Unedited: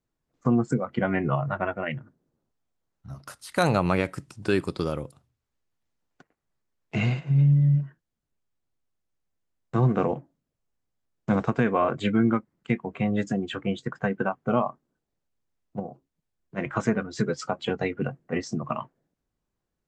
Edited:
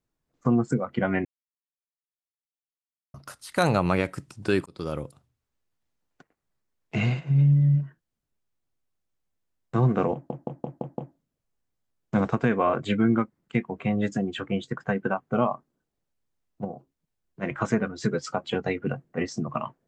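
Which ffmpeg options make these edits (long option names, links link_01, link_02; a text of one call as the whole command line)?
ffmpeg -i in.wav -filter_complex "[0:a]asplit=9[link_01][link_02][link_03][link_04][link_05][link_06][link_07][link_08][link_09];[link_01]atrim=end=1.25,asetpts=PTS-STARTPTS,afade=type=out:start_time=1.246:duration=0.004:curve=hsin[link_10];[link_02]atrim=start=1.25:end=3.14,asetpts=PTS-STARTPTS,volume=0[link_11];[link_03]atrim=start=3.14:end=4.66,asetpts=PTS-STARTPTS,afade=type=in:duration=0.004:curve=hsin,afade=type=out:start_time=1.516:duration=0.004:curve=hsin[link_12];[link_04]atrim=start=4.66:end=10.302,asetpts=PTS-STARTPTS,afade=type=in:duration=0.31[link_13];[link_05]atrim=start=10.128:end=10.302[link_14];[link_06]atrim=start=10.128:end=10.302[link_15];[link_07]atrim=start=10.128:end=10.302[link_16];[link_08]atrim=start=10.128:end=10.302[link_17];[link_09]atrim=start=10.128[link_18];[link_10][link_11][link_12][link_13]concat=n=4:v=0:a=1[link_19];[link_19][link_14]acrossfade=duration=0.004:curve1=hsin:curve2=hsin[link_20];[link_20][link_15]acrossfade=duration=0.004:curve1=hsin:curve2=hsin[link_21];[link_21][link_16]acrossfade=duration=0.004:curve1=hsin:curve2=hsin[link_22];[link_22][link_17]acrossfade=duration=0.004:curve1=hsin:curve2=hsin[link_23];[link_23][link_18]acrossfade=duration=0.004:curve1=hsin:curve2=hsin" out.wav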